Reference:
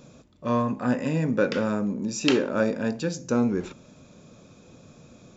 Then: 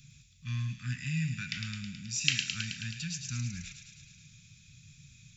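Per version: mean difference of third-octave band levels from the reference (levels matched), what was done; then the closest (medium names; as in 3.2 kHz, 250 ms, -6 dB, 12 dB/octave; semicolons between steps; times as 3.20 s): 13.5 dB: elliptic band-stop 140–2100 Hz, stop band 70 dB; on a send: feedback echo behind a high-pass 107 ms, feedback 71%, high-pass 2.5 kHz, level -4.5 dB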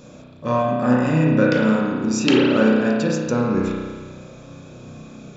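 4.5 dB: in parallel at -1.5 dB: compression, threshold -30 dBFS, peak gain reduction 13 dB; on the sum: spring tank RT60 1.6 s, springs 32 ms, chirp 25 ms, DRR -3.5 dB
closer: second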